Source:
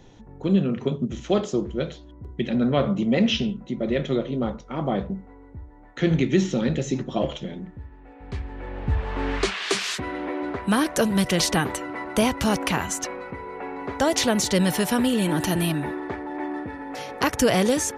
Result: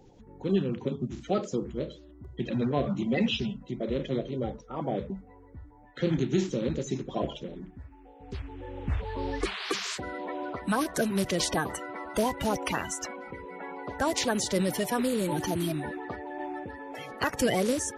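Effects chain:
spectral magnitudes quantised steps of 30 dB
level −5.5 dB

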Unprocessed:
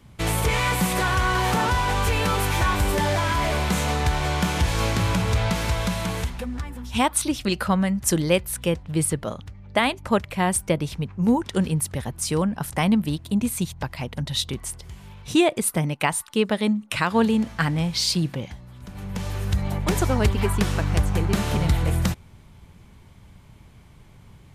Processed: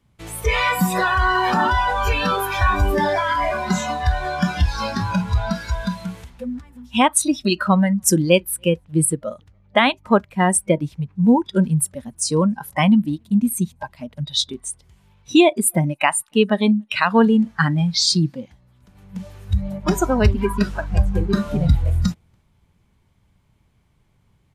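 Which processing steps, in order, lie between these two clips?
slap from a distant wall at 49 metres, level −29 dB
noise reduction from a noise print of the clip's start 18 dB
level +5.5 dB

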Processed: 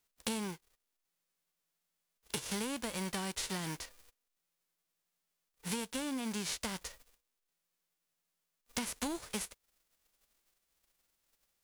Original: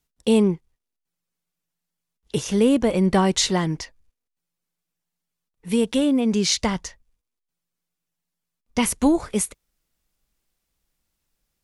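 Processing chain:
spectral envelope flattened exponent 0.3
downward compressor 8 to 1, threshold −31 dBFS, peak gain reduction 18.5 dB
level −4 dB

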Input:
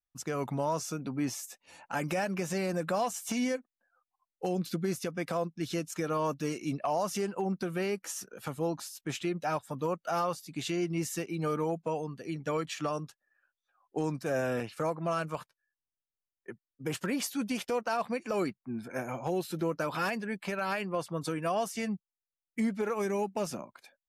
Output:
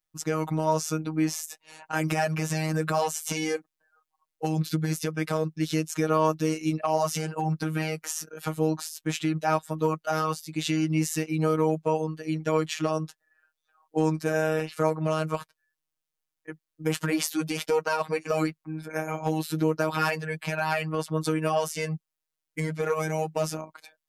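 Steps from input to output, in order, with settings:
phases set to zero 157 Hz
level +8 dB

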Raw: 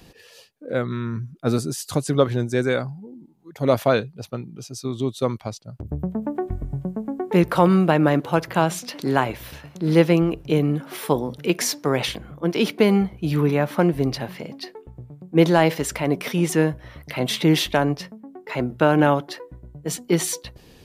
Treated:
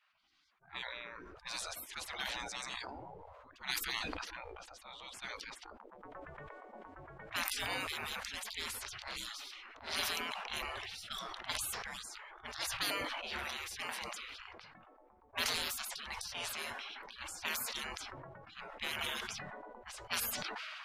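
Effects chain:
low-pass that shuts in the quiet parts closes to 890 Hz, open at −13 dBFS
gate on every frequency bin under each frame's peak −30 dB weak
level that may fall only so fast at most 21 dB per second
level +1 dB

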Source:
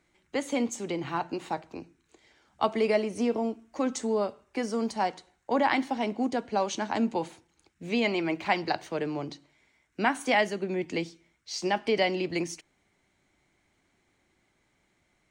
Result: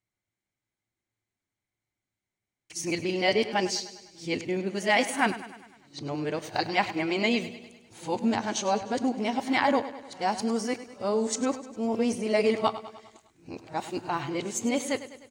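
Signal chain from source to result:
played backwards from end to start
parametric band 110 Hz +15 dB 0.3 octaves
repeating echo 101 ms, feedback 56%, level −14 dB
noise gate with hold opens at −55 dBFS
high-shelf EQ 4,600 Hz +8 dB
convolution reverb, pre-delay 4 ms, DRR 15 dB

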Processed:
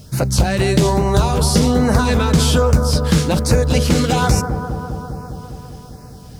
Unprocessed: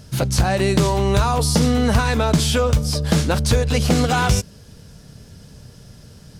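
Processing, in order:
bit reduction 9 bits
auto-filter notch sine 1.2 Hz 650–3,400 Hz
bucket-brigade delay 201 ms, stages 2,048, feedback 75%, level −7.5 dB
level +2.5 dB

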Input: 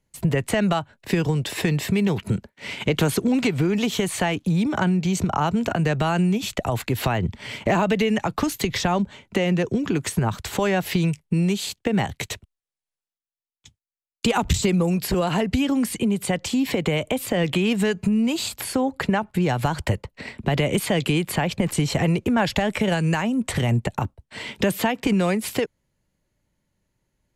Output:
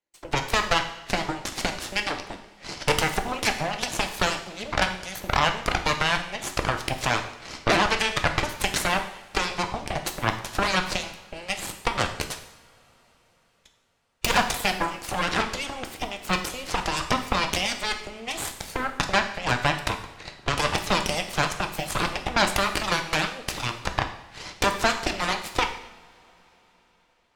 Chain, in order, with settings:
three-way crossover with the lows and the highs turned down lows −23 dB, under 320 Hz, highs −21 dB, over 7,200 Hz
harmonic generator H 6 −9 dB, 7 −14 dB, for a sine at −9.5 dBFS
harmonic and percussive parts rebalanced percussive +8 dB
in parallel at −11.5 dB: soft clipping −12 dBFS, distortion −7 dB
on the sum: convolution reverb, pre-delay 3 ms, DRR 5 dB
level −8.5 dB

